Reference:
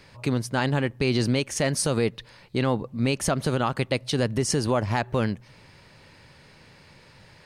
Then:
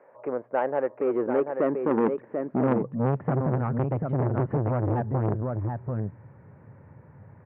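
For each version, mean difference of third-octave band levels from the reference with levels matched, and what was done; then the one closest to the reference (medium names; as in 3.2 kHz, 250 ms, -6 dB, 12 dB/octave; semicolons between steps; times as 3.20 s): 11.5 dB: Bessel low-pass 980 Hz, order 8; high-pass sweep 540 Hz -> 100 Hz, 0.89–3.59 s; delay 739 ms -6 dB; transformer saturation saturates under 660 Hz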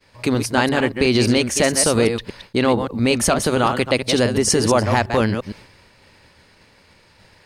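5.0 dB: chunks repeated in reverse 115 ms, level -7 dB; peaking EQ 140 Hz -13 dB 0.31 oct; expander -45 dBFS; treble shelf 10 kHz +4 dB; trim +7.5 dB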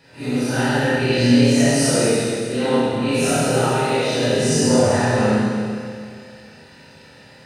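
8.5 dB: phase randomisation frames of 200 ms; comb of notches 1.1 kHz; on a send: flutter echo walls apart 4.3 m, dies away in 0.22 s; on the sum: Schroeder reverb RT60 2.2 s, combs from 29 ms, DRR -6.5 dB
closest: second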